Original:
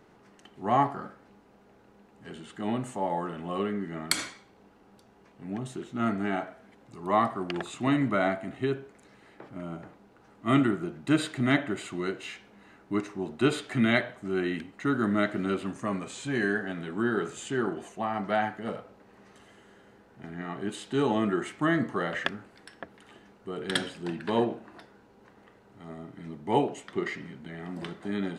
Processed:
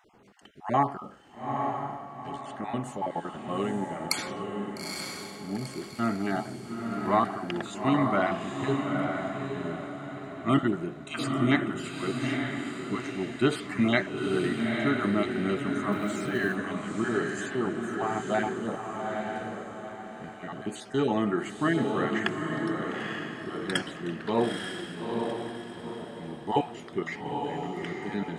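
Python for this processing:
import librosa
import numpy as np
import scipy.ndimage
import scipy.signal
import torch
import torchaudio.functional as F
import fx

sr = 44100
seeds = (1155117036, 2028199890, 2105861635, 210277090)

y = fx.spec_dropout(x, sr, seeds[0], share_pct=25)
y = fx.echo_diffused(y, sr, ms=886, feedback_pct=41, wet_db=-3.0)
y = fx.quant_float(y, sr, bits=4, at=(15.92, 16.55))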